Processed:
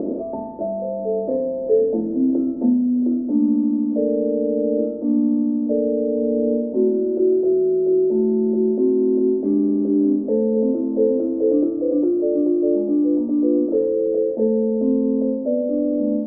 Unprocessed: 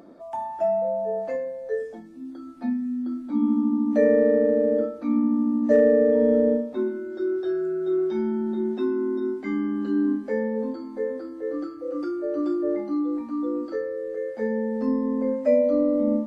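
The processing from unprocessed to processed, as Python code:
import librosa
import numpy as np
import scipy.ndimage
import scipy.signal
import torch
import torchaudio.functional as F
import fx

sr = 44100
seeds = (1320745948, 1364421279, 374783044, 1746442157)

y = fx.bin_compress(x, sr, power=0.6)
y = fx.rider(y, sr, range_db=10, speed_s=0.5)
y = fx.ladder_lowpass(y, sr, hz=560.0, resonance_pct=30)
y = y * librosa.db_to_amplitude(8.0)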